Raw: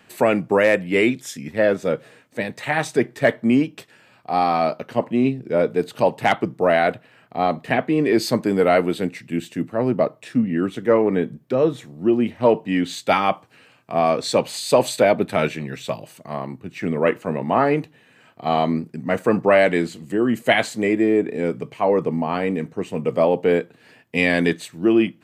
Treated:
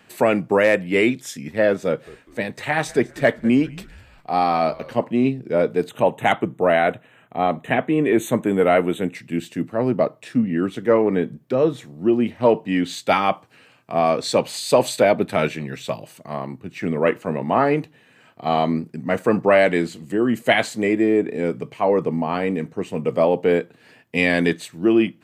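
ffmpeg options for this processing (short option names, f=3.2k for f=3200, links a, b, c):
-filter_complex "[0:a]asettb=1/sr,asplit=3[a][b][c];[a]atrim=end=1.874[d];[b]atrim=start=1.87:end=5.01,asetpts=PTS-STARTPTS,afade=t=in:d=0.004:c=qsin,afade=t=out:st=3.136:d=0.004:c=qsin,asplit=4[e][f][g][h];[f]adelay=199,afreqshift=-100,volume=-21dB[i];[g]adelay=398,afreqshift=-200,volume=-29dB[j];[h]adelay=597,afreqshift=-300,volume=-36.9dB[k];[e][i][j][k]amix=inputs=4:normalize=0,atrim=end_sample=138474[l];[c]atrim=start=5.006[m];[d][l]acrossfade=d=0.004:c1=hsin:c2=qsin[n];[n][m]acrossfade=d=0.004:c1=qsin:c2=hsin,asettb=1/sr,asplit=3[o][p][q];[o]atrim=end=5.894[r];[p]atrim=start=5.89:end=9.15,asetpts=PTS-STARTPTS,afade=t=in:d=0.004:c=qsin,afade=t=out:st=3.256:d=0.004:c=qsin,asuperstop=centerf=4900:order=8:qfactor=2.1[s];[q]atrim=start=9.146[t];[r][s]acrossfade=d=0.004:c1=hsin:c2=qsin[u];[u][t]acrossfade=d=0.004:c1=qsin:c2=hsin"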